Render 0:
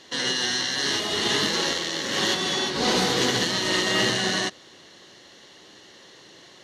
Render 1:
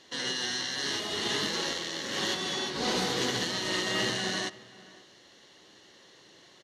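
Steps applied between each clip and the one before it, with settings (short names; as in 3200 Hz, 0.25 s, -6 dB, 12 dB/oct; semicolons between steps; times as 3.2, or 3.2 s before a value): outdoor echo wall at 91 m, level -20 dB; gain -7 dB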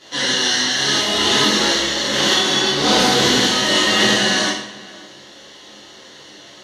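reverb RT60 0.65 s, pre-delay 6 ms, DRR -9.5 dB; gain +5 dB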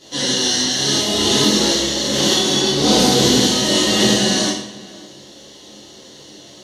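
bell 1600 Hz -13.5 dB 2.2 oct; gain +5.5 dB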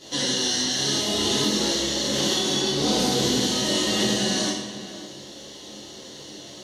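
compressor 2:1, threshold -26 dBFS, peak gain reduction 9 dB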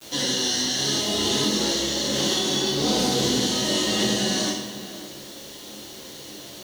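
bit-crush 7-bit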